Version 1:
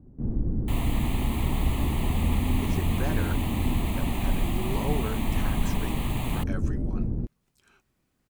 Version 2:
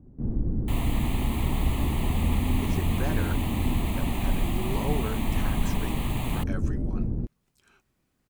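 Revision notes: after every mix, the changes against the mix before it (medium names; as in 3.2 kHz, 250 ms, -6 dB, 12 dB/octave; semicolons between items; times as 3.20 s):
no change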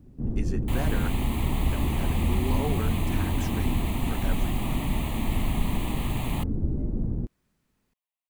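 speech: entry -2.25 s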